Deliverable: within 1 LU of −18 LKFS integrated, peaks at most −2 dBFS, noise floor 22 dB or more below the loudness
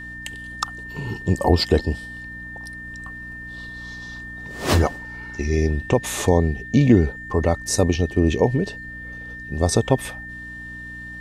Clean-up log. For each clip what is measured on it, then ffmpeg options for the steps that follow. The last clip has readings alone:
mains hum 60 Hz; hum harmonics up to 300 Hz; level of the hum −40 dBFS; interfering tone 1,800 Hz; level of the tone −34 dBFS; integrated loudness −21.5 LKFS; sample peak −2.0 dBFS; target loudness −18.0 LKFS
→ -af "bandreject=frequency=60:width_type=h:width=4,bandreject=frequency=120:width_type=h:width=4,bandreject=frequency=180:width_type=h:width=4,bandreject=frequency=240:width_type=h:width=4,bandreject=frequency=300:width_type=h:width=4"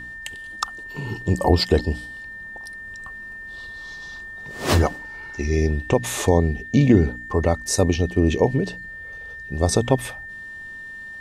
mains hum none found; interfering tone 1,800 Hz; level of the tone −34 dBFS
→ -af "bandreject=frequency=1800:width=30"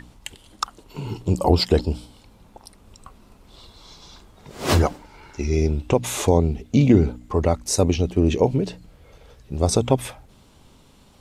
interfering tone none found; integrated loudness −21.5 LKFS; sample peak −2.0 dBFS; target loudness −18.0 LKFS
→ -af "volume=3.5dB,alimiter=limit=-2dB:level=0:latency=1"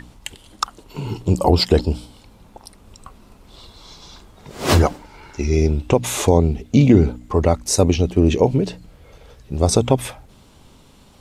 integrated loudness −18.5 LKFS; sample peak −2.0 dBFS; background noise floor −49 dBFS

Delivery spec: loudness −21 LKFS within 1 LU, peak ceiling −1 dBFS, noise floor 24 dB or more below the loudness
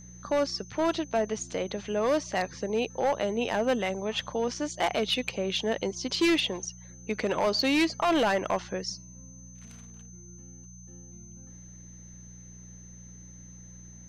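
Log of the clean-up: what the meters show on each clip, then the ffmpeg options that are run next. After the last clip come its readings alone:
mains hum 60 Hz; hum harmonics up to 180 Hz; level of the hum −47 dBFS; interfering tone 6,200 Hz; level of the tone −50 dBFS; integrated loudness −28.5 LKFS; sample peak −18.5 dBFS; target loudness −21.0 LKFS
→ -af "bandreject=frequency=60:width_type=h:width=4,bandreject=frequency=120:width_type=h:width=4,bandreject=frequency=180:width_type=h:width=4"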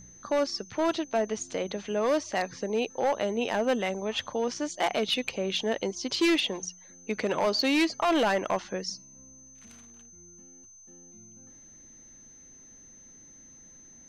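mains hum none found; interfering tone 6,200 Hz; level of the tone −50 dBFS
→ -af "bandreject=frequency=6200:width=30"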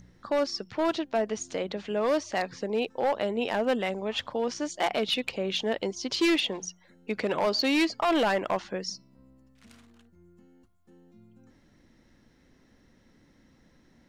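interfering tone none found; integrated loudness −28.5 LKFS; sample peak −18.5 dBFS; target loudness −21.0 LKFS
→ -af "volume=7.5dB"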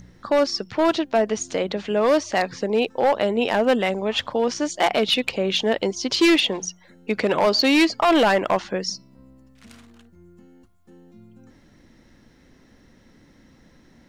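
integrated loudness −21.0 LKFS; sample peak −11.0 dBFS; background noise floor −55 dBFS

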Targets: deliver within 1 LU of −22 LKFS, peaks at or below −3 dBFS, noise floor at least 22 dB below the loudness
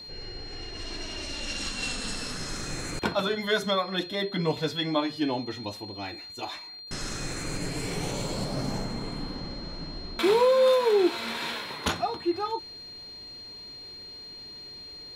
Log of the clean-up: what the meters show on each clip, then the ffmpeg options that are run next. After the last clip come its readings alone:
interfering tone 4,200 Hz; level of the tone −41 dBFS; integrated loudness −29.0 LKFS; sample peak −13.0 dBFS; target loudness −22.0 LKFS
→ -af "bandreject=frequency=4200:width=30"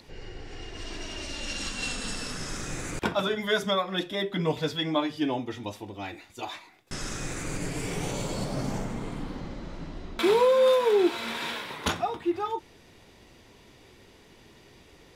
interfering tone none found; integrated loudness −29.0 LKFS; sample peak −13.5 dBFS; target loudness −22.0 LKFS
→ -af "volume=7dB"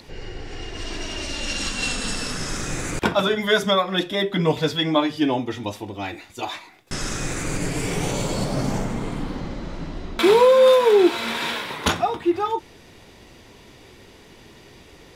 integrated loudness −22.0 LKFS; sample peak −6.5 dBFS; background noise floor −48 dBFS

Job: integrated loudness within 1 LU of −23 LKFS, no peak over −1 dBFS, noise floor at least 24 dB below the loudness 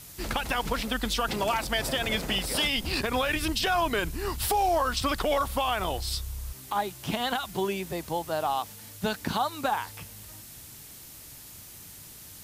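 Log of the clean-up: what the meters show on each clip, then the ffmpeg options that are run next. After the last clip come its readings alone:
background noise floor −47 dBFS; target noise floor −53 dBFS; integrated loudness −28.5 LKFS; sample peak −15.5 dBFS; target loudness −23.0 LKFS
→ -af "afftdn=noise_reduction=6:noise_floor=-47"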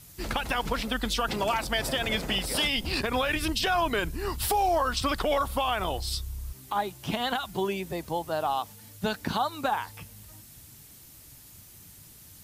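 background noise floor −51 dBFS; target noise floor −53 dBFS
→ -af "afftdn=noise_reduction=6:noise_floor=-51"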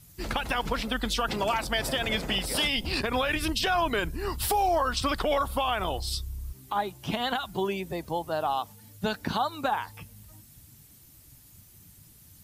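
background noise floor −54 dBFS; integrated loudness −28.5 LKFS; sample peak −15.5 dBFS; target loudness −23.0 LKFS
→ -af "volume=5.5dB"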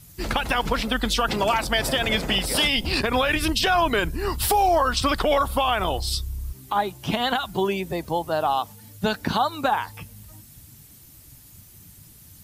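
integrated loudness −23.0 LKFS; sample peak −10.0 dBFS; background noise floor −49 dBFS

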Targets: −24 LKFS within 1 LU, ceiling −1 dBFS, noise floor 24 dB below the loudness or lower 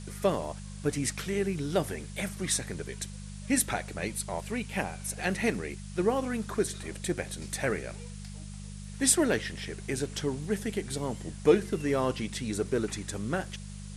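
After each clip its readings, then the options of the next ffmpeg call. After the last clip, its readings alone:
mains hum 50 Hz; hum harmonics up to 200 Hz; level of the hum −39 dBFS; background noise floor −42 dBFS; target noise floor −55 dBFS; integrated loudness −31.0 LKFS; sample peak −8.5 dBFS; target loudness −24.0 LKFS
→ -af "bandreject=frequency=50:width_type=h:width=4,bandreject=frequency=100:width_type=h:width=4,bandreject=frequency=150:width_type=h:width=4,bandreject=frequency=200:width_type=h:width=4"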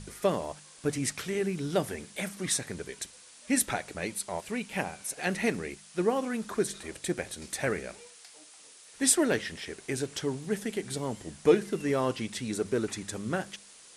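mains hum none found; background noise floor −53 dBFS; target noise floor −55 dBFS
→ -af "afftdn=noise_reduction=6:noise_floor=-53"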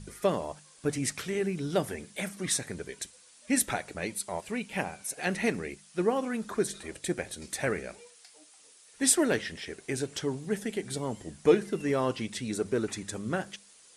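background noise floor −57 dBFS; integrated loudness −31.0 LKFS; sample peak −8.5 dBFS; target loudness −24.0 LKFS
→ -af "volume=7dB"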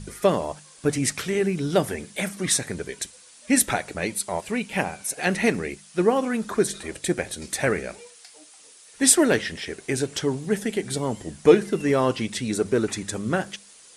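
integrated loudness −24.0 LKFS; sample peak −1.5 dBFS; background noise floor −50 dBFS

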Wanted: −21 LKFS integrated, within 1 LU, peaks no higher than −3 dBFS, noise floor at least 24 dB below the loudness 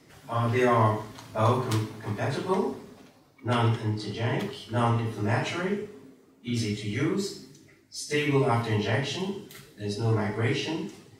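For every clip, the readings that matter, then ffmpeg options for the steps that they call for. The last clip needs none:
integrated loudness −28.0 LKFS; sample peak −10.5 dBFS; target loudness −21.0 LKFS
→ -af "volume=7dB"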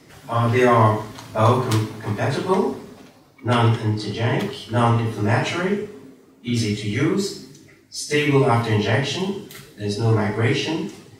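integrated loudness −21.0 LKFS; sample peak −3.5 dBFS; background noise floor −51 dBFS

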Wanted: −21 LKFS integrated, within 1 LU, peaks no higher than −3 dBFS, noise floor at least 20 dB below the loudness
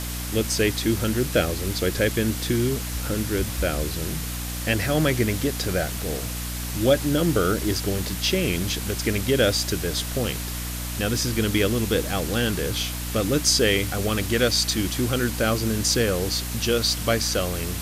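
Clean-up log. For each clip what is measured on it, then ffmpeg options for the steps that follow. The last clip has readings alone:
mains hum 60 Hz; hum harmonics up to 300 Hz; level of the hum −29 dBFS; background noise floor −30 dBFS; target noise floor −44 dBFS; integrated loudness −23.5 LKFS; sample peak −6.5 dBFS; target loudness −21.0 LKFS
→ -af "bandreject=frequency=60:width_type=h:width=6,bandreject=frequency=120:width_type=h:width=6,bandreject=frequency=180:width_type=h:width=6,bandreject=frequency=240:width_type=h:width=6,bandreject=frequency=300:width_type=h:width=6"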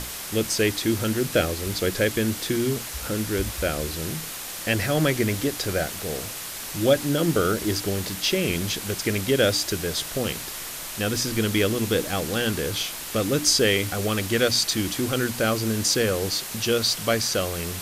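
mains hum none found; background noise floor −35 dBFS; target noise floor −44 dBFS
→ -af "afftdn=noise_reduction=9:noise_floor=-35"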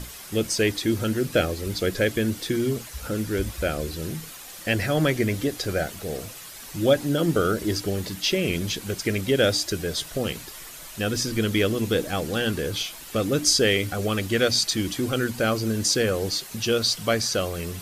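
background noise floor −41 dBFS; target noise floor −45 dBFS
→ -af "afftdn=noise_reduction=6:noise_floor=-41"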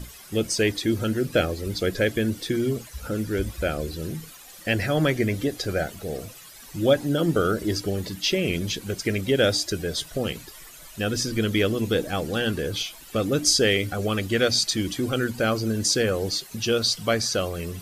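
background noise floor −45 dBFS; integrated loudness −24.5 LKFS; sample peak −7.0 dBFS; target loudness −21.0 LKFS
→ -af "volume=3.5dB"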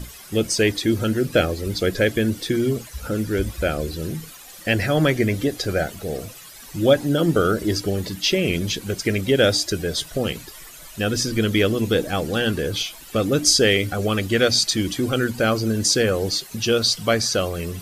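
integrated loudness −21.0 LKFS; sample peak −3.5 dBFS; background noise floor −42 dBFS

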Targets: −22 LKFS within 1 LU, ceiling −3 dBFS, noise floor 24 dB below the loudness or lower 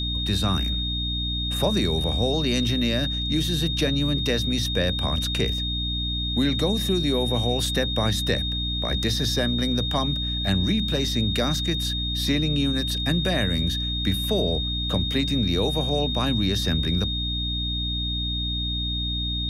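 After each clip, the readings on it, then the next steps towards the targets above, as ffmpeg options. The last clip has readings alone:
mains hum 60 Hz; hum harmonics up to 300 Hz; level of the hum −27 dBFS; interfering tone 3,700 Hz; level of the tone −27 dBFS; integrated loudness −23.5 LKFS; sample peak −9.0 dBFS; target loudness −22.0 LKFS
→ -af "bandreject=frequency=60:width_type=h:width=6,bandreject=frequency=120:width_type=h:width=6,bandreject=frequency=180:width_type=h:width=6,bandreject=frequency=240:width_type=h:width=6,bandreject=frequency=300:width_type=h:width=6"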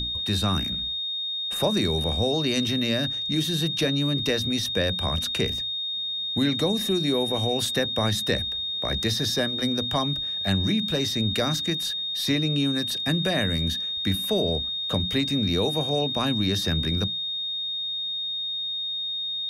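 mains hum none found; interfering tone 3,700 Hz; level of the tone −27 dBFS
→ -af "bandreject=frequency=3700:width=30"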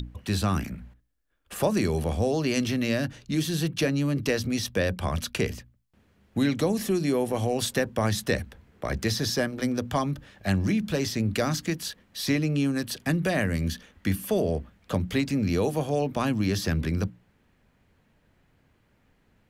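interfering tone none found; integrated loudness −27.5 LKFS; sample peak −11.5 dBFS; target loudness −22.0 LKFS
→ -af "volume=5.5dB"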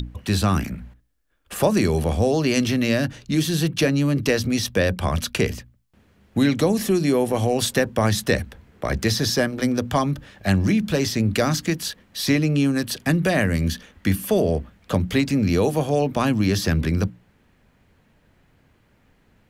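integrated loudness −22.0 LKFS; sample peak −6.0 dBFS; background noise floor −61 dBFS

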